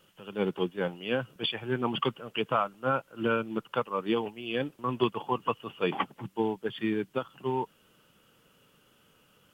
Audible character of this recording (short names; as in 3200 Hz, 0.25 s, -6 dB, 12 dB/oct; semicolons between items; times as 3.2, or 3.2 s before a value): noise floor -65 dBFS; spectral tilt -3.5 dB/oct